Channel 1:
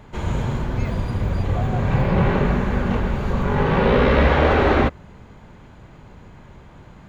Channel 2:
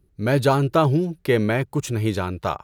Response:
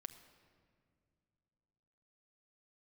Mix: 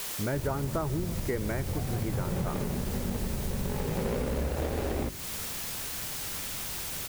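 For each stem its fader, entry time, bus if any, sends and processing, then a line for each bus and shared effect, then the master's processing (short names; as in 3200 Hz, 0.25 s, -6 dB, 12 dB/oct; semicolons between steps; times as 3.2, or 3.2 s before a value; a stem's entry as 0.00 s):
-3.0 dB, 0.20 s, send -15 dB, median filter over 41 samples; notches 50/100/150/200/250/300/350/400 Hz
-6.0 dB, 0.00 s, send -3 dB, steep low-pass 2300 Hz 96 dB/oct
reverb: on, pre-delay 6 ms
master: requantised 6-bit, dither triangular; compressor 4:1, threshold -29 dBFS, peak gain reduction 11.5 dB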